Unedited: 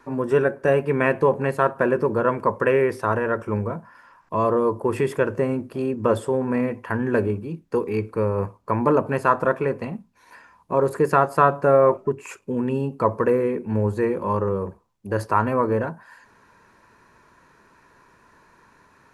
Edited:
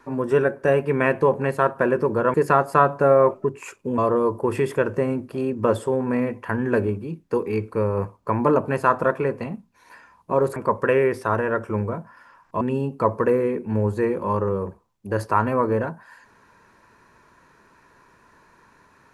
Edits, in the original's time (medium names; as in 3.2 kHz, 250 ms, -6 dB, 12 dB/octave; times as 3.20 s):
2.34–4.39 s: swap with 10.97–12.61 s